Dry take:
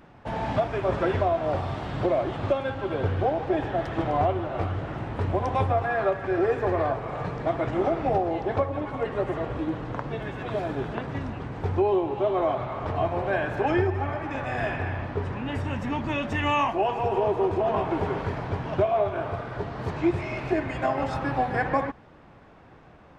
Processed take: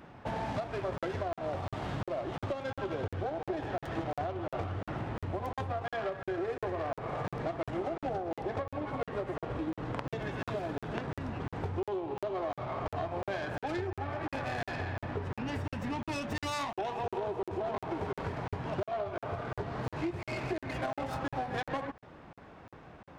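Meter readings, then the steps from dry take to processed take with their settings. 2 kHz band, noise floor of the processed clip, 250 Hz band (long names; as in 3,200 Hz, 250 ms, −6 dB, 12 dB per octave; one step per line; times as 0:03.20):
−8.0 dB, below −85 dBFS, −8.5 dB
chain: stylus tracing distortion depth 0.2 ms
downward compressor, threshold −32 dBFS, peak gain reduction 13.5 dB
high-pass filter 49 Hz 6 dB per octave
regular buffer underruns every 0.35 s, samples 2,048, zero, from 0:00.98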